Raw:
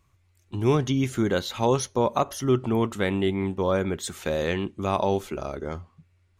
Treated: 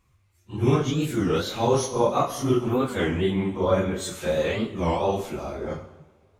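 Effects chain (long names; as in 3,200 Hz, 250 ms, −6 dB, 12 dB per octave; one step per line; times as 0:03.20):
random phases in long frames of 100 ms
coupled-rooms reverb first 0.9 s, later 3.2 s, from −21 dB, DRR 7 dB
wow of a warped record 33 1/3 rpm, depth 250 cents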